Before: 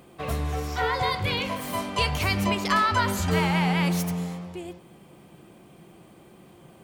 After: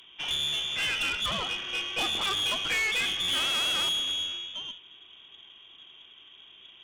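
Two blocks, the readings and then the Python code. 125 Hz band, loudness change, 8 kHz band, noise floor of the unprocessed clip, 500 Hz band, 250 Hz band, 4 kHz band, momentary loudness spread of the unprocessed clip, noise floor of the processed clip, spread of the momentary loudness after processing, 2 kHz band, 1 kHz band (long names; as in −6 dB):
−21.5 dB, −1.5 dB, +0.5 dB, −52 dBFS, −12.0 dB, −18.0 dB, +7.5 dB, 11 LU, −54 dBFS, 8 LU, −1.0 dB, −11.5 dB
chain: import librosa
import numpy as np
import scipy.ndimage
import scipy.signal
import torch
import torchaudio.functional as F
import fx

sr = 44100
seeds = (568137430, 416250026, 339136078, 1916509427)

y = fx.freq_invert(x, sr, carrier_hz=3500)
y = fx.tube_stage(y, sr, drive_db=24.0, bias=0.4)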